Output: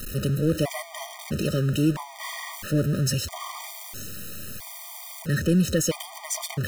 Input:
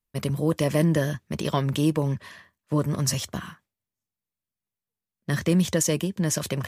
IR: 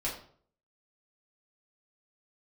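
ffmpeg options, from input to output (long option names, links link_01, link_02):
-af "aeval=exprs='val(0)+0.5*0.0562*sgn(val(0))':channel_layout=same,afftfilt=real='re*gt(sin(2*PI*0.76*pts/sr)*(1-2*mod(floor(b*sr/1024/620),2)),0)':imag='im*gt(sin(2*PI*0.76*pts/sr)*(1-2*mod(floor(b*sr/1024/620),2)),0)':win_size=1024:overlap=0.75,volume=-1dB"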